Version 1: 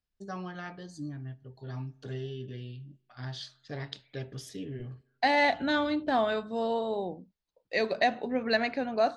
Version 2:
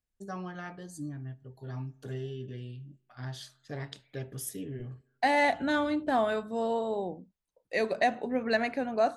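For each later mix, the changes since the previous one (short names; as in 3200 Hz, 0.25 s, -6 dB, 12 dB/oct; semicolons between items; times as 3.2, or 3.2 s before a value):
master: remove synth low-pass 4600 Hz, resonance Q 1.8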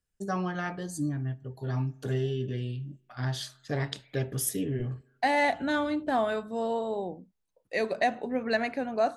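first voice +8.0 dB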